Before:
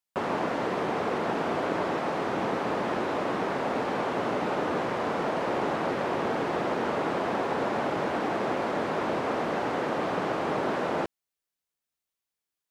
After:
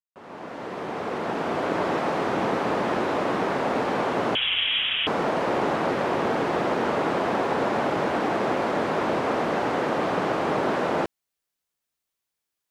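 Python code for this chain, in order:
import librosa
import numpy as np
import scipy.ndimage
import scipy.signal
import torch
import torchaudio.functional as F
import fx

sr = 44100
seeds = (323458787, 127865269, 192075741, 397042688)

y = fx.fade_in_head(x, sr, length_s=1.95)
y = fx.freq_invert(y, sr, carrier_hz=3600, at=(4.35, 5.07))
y = y * librosa.db_to_amplitude(4.0)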